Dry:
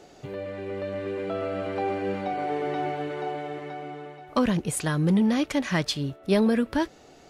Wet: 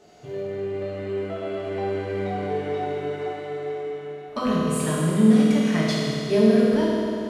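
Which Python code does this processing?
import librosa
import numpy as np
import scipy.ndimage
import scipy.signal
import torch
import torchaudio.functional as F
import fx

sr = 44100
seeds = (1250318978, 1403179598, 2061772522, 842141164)

y = fx.rev_fdn(x, sr, rt60_s=2.9, lf_ratio=1.0, hf_ratio=0.85, size_ms=14.0, drr_db=-7.5)
y = y * librosa.db_to_amplitude(-6.5)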